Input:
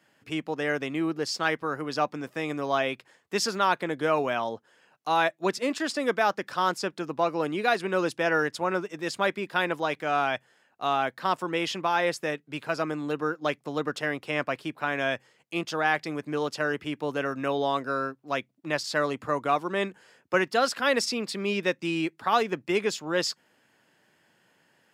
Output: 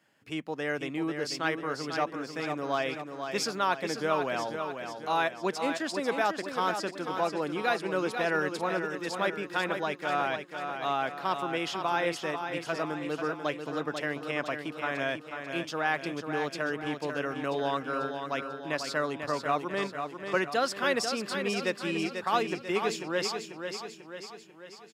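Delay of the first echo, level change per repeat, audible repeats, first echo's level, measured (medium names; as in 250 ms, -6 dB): 492 ms, -5.5 dB, 6, -7.0 dB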